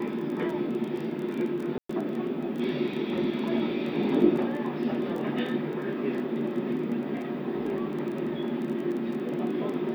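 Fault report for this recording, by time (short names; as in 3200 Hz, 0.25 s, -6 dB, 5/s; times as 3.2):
crackle 19/s -34 dBFS
1.78–1.89 gap 0.114 s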